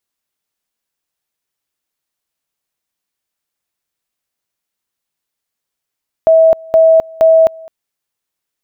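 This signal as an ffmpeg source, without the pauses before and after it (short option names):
-f lavfi -i "aevalsrc='pow(10,(-4-25.5*gte(mod(t,0.47),0.26))/20)*sin(2*PI*648*t)':d=1.41:s=44100"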